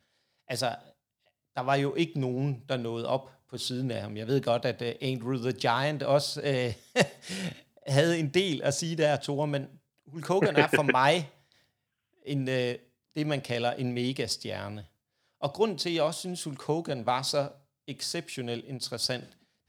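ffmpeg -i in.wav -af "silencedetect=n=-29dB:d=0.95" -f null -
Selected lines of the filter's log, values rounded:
silence_start: 11.21
silence_end: 12.28 | silence_duration: 1.07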